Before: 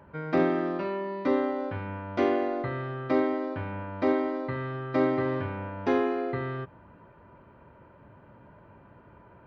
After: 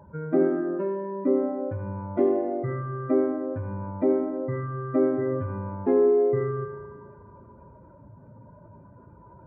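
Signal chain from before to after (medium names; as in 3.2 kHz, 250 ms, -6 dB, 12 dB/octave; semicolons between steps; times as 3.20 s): spectral contrast enhancement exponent 2.1; spring tank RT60 1.7 s, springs 36 ms, chirp 70 ms, DRR 5.5 dB; trim +3 dB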